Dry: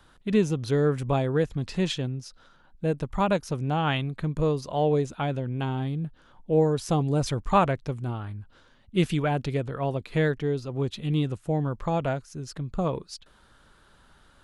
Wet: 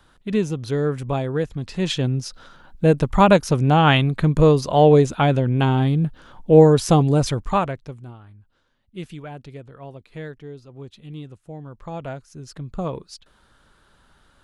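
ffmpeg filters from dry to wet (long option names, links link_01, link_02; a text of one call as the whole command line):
ffmpeg -i in.wav -af "volume=21dB,afade=type=in:start_time=1.78:duration=0.4:silence=0.334965,afade=type=out:start_time=6.76:duration=0.87:silence=0.266073,afade=type=out:start_time=7.63:duration=0.55:silence=0.334965,afade=type=in:start_time=11.64:duration=1.03:silence=0.298538" out.wav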